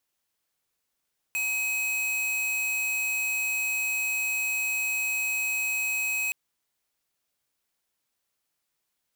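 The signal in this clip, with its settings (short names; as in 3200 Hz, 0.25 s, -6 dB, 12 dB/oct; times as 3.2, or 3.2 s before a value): tone square 2540 Hz -28 dBFS 4.97 s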